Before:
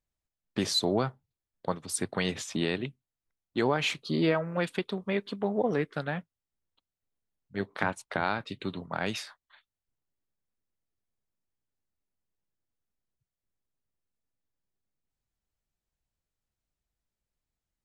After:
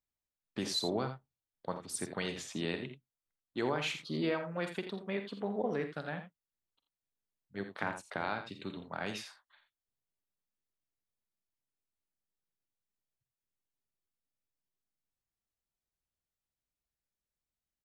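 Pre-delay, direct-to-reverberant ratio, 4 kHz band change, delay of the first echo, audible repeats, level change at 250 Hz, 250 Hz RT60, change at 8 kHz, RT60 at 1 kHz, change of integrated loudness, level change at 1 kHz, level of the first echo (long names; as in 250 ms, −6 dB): no reverb audible, no reverb audible, −6.0 dB, 46 ms, 2, −7.0 dB, no reverb audible, −6.5 dB, no reverb audible, −6.5 dB, −6.0 dB, −12.0 dB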